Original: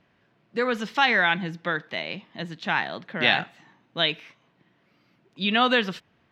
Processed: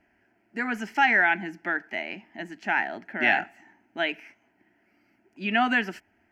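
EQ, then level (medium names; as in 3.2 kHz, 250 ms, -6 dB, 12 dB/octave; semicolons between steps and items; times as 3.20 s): static phaser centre 750 Hz, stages 8; +1.5 dB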